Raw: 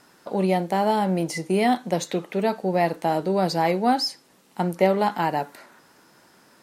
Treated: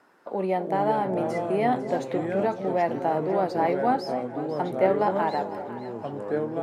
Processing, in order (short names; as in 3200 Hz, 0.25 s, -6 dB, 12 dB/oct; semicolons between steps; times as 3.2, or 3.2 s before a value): three-band isolator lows -12 dB, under 260 Hz, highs -15 dB, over 2200 Hz; echoes that change speed 0.249 s, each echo -4 st, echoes 2, each echo -6 dB; echo with dull and thin repeats by turns 0.25 s, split 810 Hz, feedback 69%, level -10 dB; gain -2 dB